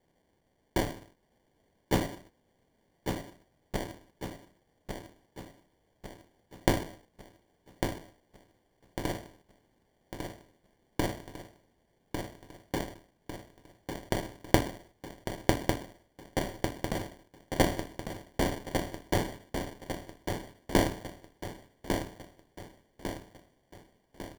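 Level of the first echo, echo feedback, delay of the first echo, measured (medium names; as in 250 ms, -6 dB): -6.0 dB, 49%, 1150 ms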